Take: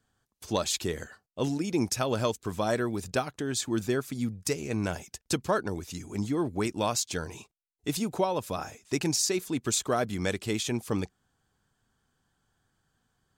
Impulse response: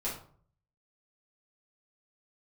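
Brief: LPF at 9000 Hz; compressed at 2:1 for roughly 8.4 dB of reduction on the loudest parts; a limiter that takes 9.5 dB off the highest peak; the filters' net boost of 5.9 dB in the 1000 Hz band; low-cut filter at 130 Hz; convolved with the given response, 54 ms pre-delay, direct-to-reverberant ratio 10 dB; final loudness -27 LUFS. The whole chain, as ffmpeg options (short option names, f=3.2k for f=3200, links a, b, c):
-filter_complex "[0:a]highpass=130,lowpass=9k,equalizer=f=1k:t=o:g=7.5,acompressor=threshold=-34dB:ratio=2,alimiter=level_in=1.5dB:limit=-24dB:level=0:latency=1,volume=-1.5dB,asplit=2[a][b];[1:a]atrim=start_sample=2205,adelay=54[c];[b][c]afir=irnorm=-1:irlink=0,volume=-14dB[d];[a][d]amix=inputs=2:normalize=0,volume=10dB"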